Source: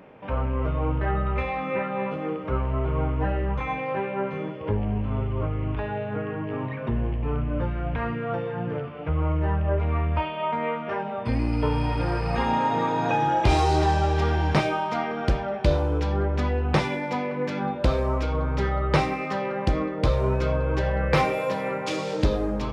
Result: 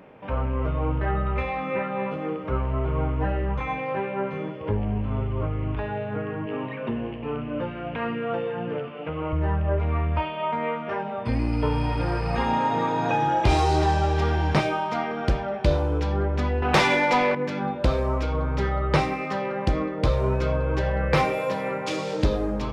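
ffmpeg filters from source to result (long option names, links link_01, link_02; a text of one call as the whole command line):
ffmpeg -i in.wav -filter_complex "[0:a]asettb=1/sr,asplit=3[link_01][link_02][link_03];[link_01]atrim=end=6.464[link_04];[link_02]atrim=start=6.46:end=9.33,asetpts=PTS-STARTPTS,afade=type=in:duration=0.004:curve=qsin,afade=type=out:start_time=2.866:duration=0.004:curve=qsin,highpass=180,equalizer=frequency=230:width_type=q:width=4:gain=3,equalizer=frequency=490:width_type=q:width=4:gain=3,equalizer=frequency=2800:width_type=q:width=4:gain=7,lowpass=frequency=5300:width=0.5412,lowpass=frequency=5300:width=1.3066[link_05];[link_03]atrim=start=9.326[link_06];[link_04][link_05]acrossfade=duration=0.004:curve1=hsin:curve2=qsin[link_07];[link_07][link_06]acrossfade=duration=0.004:curve1=qsin:curve2=hsin,asettb=1/sr,asplit=3[link_08][link_09][link_10];[link_08]atrim=end=16.624[link_11];[link_09]atrim=start=16.62:end=17.35,asetpts=PTS-STARTPTS,afade=type=in:duration=0.004:curve=qsin,afade=type=out:start_time=0.726:duration=0.004:curve=qsin,asplit=2[link_12][link_13];[link_13]highpass=frequency=720:poles=1,volume=19dB,asoftclip=type=tanh:threshold=-10dB[link_14];[link_12][link_14]amix=inputs=2:normalize=0,lowpass=frequency=6400:poles=1,volume=-6dB[link_15];[link_10]atrim=start=17.346[link_16];[link_11][link_15]acrossfade=duration=0.004:curve1=hsin:curve2=qsin[link_17];[link_17][link_16]acrossfade=duration=0.004:curve1=qsin:curve2=hsin" out.wav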